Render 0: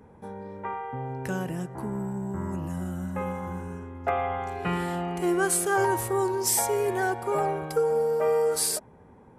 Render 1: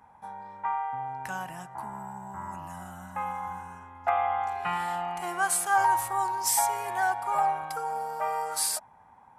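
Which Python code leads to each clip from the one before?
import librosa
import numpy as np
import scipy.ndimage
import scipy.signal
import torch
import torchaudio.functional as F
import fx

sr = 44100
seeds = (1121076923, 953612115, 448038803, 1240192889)

y = fx.low_shelf_res(x, sr, hz=600.0, db=-11.0, q=3.0)
y = F.gain(torch.from_numpy(y), -1.5).numpy()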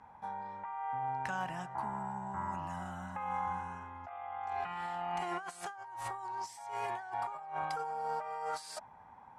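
y = fx.over_compress(x, sr, threshold_db=-35.0, ratio=-1.0)
y = scipy.signal.sosfilt(scipy.signal.butter(2, 5500.0, 'lowpass', fs=sr, output='sos'), y)
y = F.gain(torch.from_numpy(y), -4.5).numpy()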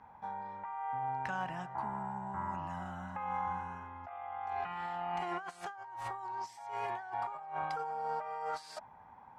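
y = fx.peak_eq(x, sr, hz=9800.0, db=-11.0, octaves=1.2)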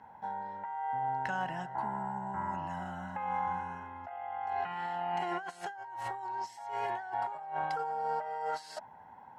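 y = fx.notch_comb(x, sr, f0_hz=1200.0)
y = F.gain(torch.from_numpy(y), 3.5).numpy()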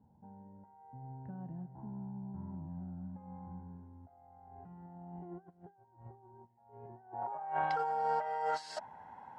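y = fx.filter_sweep_lowpass(x, sr, from_hz=220.0, to_hz=7700.0, start_s=6.99, end_s=7.85, q=0.86)
y = F.gain(torch.from_numpy(y), 1.0).numpy()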